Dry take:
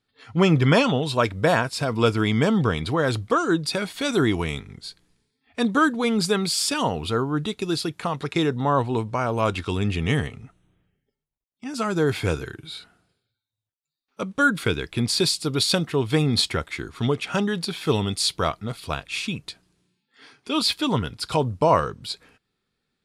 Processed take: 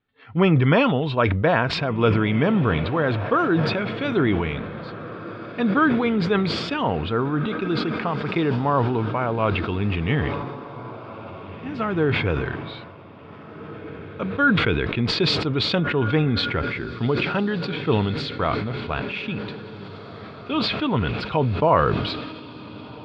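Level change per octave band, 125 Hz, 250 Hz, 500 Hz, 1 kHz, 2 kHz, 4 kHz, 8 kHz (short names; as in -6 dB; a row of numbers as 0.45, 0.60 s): +2.5 dB, +1.5 dB, +1.0 dB, +1.5 dB, +2.0 dB, -2.0 dB, under -15 dB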